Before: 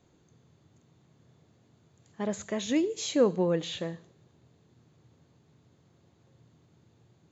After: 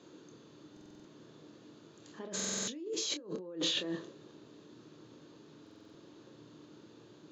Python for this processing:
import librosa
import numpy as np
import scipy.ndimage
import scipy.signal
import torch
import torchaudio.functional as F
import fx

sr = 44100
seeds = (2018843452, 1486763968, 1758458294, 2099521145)

y = fx.dynamic_eq(x, sr, hz=2800.0, q=1.1, threshold_db=-50.0, ratio=4.0, max_db=-5, at=(2.87, 3.72))
y = fx.over_compress(y, sr, threshold_db=-41.0, ratio=-1.0)
y = (np.mod(10.0 ** (21.5 / 20.0) * y + 1.0, 2.0) - 1.0) / 10.0 ** (21.5 / 20.0)
y = fx.cabinet(y, sr, low_hz=280.0, low_slope=12, high_hz=6100.0, hz=(310.0, 750.0, 2100.0), db=(7, -10, -8))
y = fx.doubler(y, sr, ms=27.0, db=-8.5)
y = fx.buffer_glitch(y, sr, at_s=(0.72, 2.35, 5.62), block=2048, repeats=6)
y = y * librosa.db_to_amplitude(2.0)